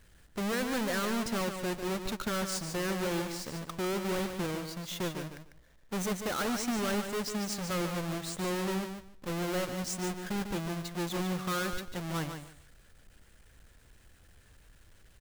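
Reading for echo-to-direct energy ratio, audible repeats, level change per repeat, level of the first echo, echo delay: -7.5 dB, 2, -14.5 dB, -7.5 dB, 147 ms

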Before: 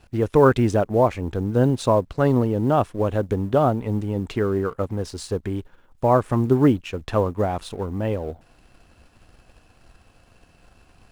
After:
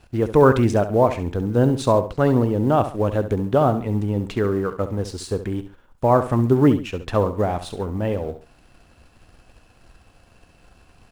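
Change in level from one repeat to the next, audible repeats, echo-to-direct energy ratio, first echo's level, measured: -9.5 dB, 2, -11.0 dB, -11.5 dB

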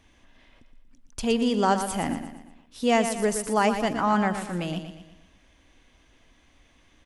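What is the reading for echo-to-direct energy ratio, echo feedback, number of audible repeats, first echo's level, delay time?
-8.0 dB, 46%, 4, -9.0 dB, 118 ms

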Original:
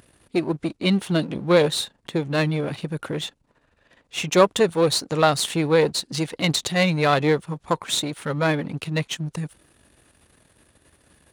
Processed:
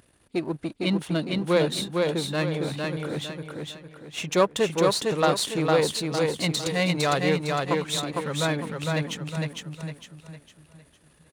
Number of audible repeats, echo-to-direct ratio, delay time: 4, -2.5 dB, 456 ms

